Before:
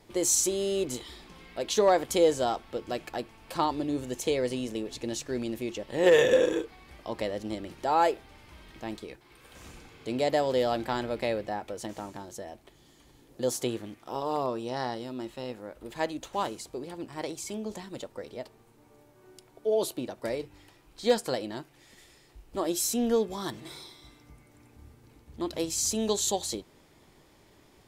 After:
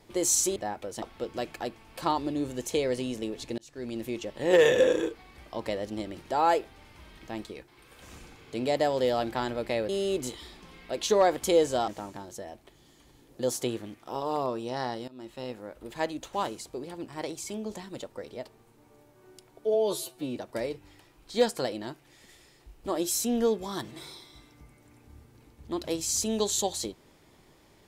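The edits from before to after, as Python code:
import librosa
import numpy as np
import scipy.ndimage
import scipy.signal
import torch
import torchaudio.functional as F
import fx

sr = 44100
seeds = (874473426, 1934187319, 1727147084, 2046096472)

y = fx.edit(x, sr, fx.swap(start_s=0.56, length_s=1.99, other_s=11.42, other_length_s=0.46),
    fx.fade_in_span(start_s=5.11, length_s=0.46),
    fx.fade_in_from(start_s=15.08, length_s=0.35, floor_db=-18.0),
    fx.stretch_span(start_s=19.74, length_s=0.31, factor=2.0), tone=tone)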